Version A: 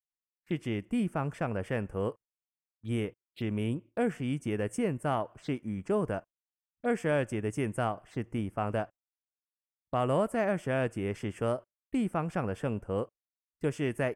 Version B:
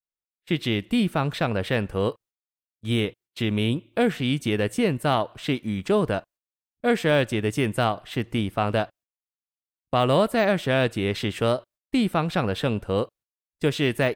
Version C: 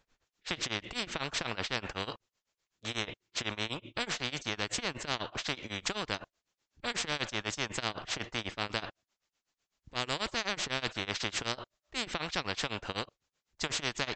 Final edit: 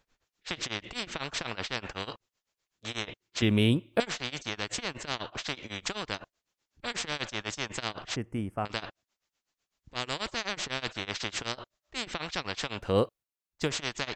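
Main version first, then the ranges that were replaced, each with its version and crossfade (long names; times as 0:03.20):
C
0:03.42–0:04.00: punch in from B
0:08.16–0:08.65: punch in from A
0:12.87–0:13.62: punch in from B, crossfade 0.24 s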